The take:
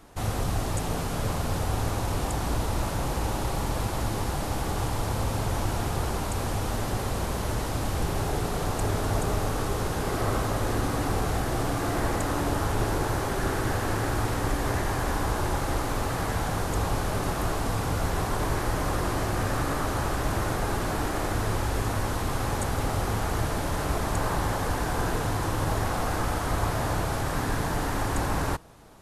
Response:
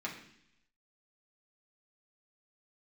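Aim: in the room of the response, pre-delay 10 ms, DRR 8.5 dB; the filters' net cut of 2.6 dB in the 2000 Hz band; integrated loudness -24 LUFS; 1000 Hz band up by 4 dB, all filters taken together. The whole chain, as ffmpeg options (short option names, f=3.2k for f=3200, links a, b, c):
-filter_complex "[0:a]equalizer=f=1k:t=o:g=6.5,equalizer=f=2k:t=o:g=-6.5,asplit=2[a][b];[1:a]atrim=start_sample=2205,adelay=10[c];[b][c]afir=irnorm=-1:irlink=0,volume=-11dB[d];[a][d]amix=inputs=2:normalize=0,volume=3dB"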